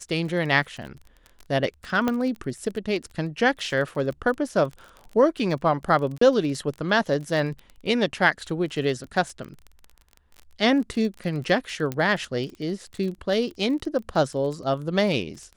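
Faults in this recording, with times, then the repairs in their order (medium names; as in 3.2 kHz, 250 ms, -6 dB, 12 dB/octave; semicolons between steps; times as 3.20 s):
crackle 26 per s -32 dBFS
2.08 s: pop -11 dBFS
6.18–6.21 s: dropout 34 ms
11.92 s: pop -14 dBFS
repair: de-click; interpolate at 6.18 s, 34 ms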